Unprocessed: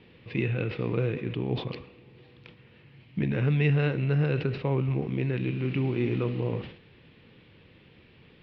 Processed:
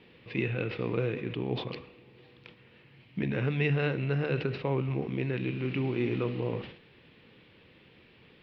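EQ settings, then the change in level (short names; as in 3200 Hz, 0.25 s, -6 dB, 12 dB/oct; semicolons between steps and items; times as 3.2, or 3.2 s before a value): low shelf 190 Hz -6.5 dB; notches 50/100/150 Hz; 0.0 dB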